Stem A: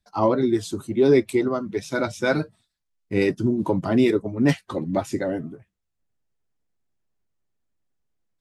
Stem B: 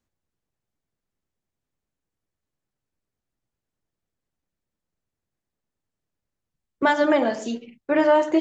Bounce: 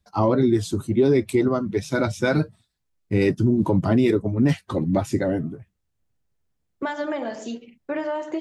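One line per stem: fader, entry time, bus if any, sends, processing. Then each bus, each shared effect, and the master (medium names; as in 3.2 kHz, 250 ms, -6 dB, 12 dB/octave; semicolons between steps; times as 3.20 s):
+1.0 dB, 0.00 s, no send, peaking EQ 85 Hz +8.5 dB 2.4 oct
-3.0 dB, 0.00 s, no send, compression 6:1, threshold -21 dBFS, peak gain reduction 8 dB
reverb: none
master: peak limiter -10 dBFS, peak gain reduction 7.5 dB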